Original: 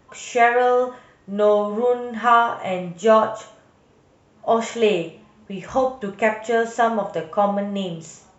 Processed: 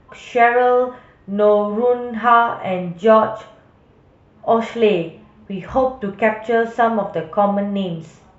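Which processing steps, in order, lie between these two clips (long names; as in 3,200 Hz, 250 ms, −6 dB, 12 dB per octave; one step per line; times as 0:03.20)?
low-pass filter 3,200 Hz 12 dB per octave
low-shelf EQ 120 Hz +8.5 dB
level +2.5 dB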